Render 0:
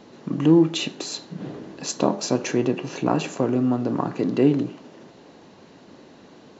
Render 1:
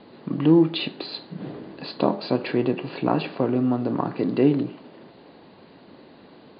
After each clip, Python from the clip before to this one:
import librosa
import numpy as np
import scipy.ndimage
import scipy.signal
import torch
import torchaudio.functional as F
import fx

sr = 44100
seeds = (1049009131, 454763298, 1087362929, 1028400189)

y = scipy.signal.sosfilt(scipy.signal.cheby1(10, 1.0, 4800.0, 'lowpass', fs=sr, output='sos'), x)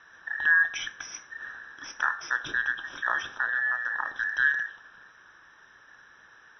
y = fx.band_invert(x, sr, width_hz=2000)
y = F.gain(torch.from_numpy(y), -6.0).numpy()